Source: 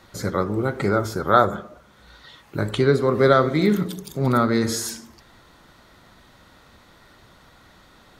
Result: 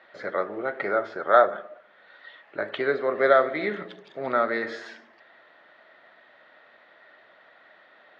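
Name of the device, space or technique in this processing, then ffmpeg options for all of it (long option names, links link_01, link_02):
phone earpiece: -af "highpass=470,equalizer=frequency=630:width_type=q:width=4:gain=9,equalizer=frequency=1000:width_type=q:width=4:gain=-4,equalizer=frequency=1800:width_type=q:width=4:gain=9,lowpass=frequency=3300:width=0.5412,lowpass=frequency=3300:width=1.3066,volume=-3.5dB"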